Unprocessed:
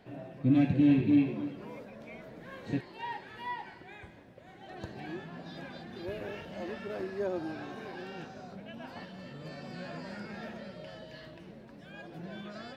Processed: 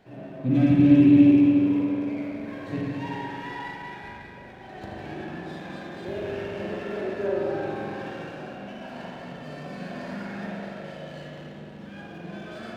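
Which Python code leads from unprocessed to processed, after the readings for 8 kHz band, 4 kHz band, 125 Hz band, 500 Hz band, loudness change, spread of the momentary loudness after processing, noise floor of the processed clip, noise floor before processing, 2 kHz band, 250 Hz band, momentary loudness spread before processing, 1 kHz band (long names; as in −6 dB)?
can't be measured, +4.5 dB, +7.0 dB, +8.5 dB, +10.5 dB, 23 LU, −43 dBFS, −52 dBFS, +6.5 dB, +10.0 dB, 21 LU, +6.0 dB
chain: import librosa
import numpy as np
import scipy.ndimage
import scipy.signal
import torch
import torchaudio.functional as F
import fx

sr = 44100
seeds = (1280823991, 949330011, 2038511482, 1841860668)

y = fx.rev_spring(x, sr, rt60_s=3.0, pass_ms=(40, 45), chirp_ms=45, drr_db=-6.0)
y = fx.running_max(y, sr, window=3)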